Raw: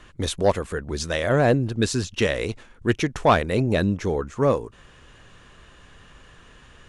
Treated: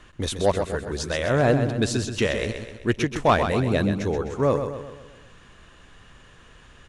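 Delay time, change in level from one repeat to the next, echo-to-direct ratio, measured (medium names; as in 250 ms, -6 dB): 128 ms, -6.0 dB, -7.0 dB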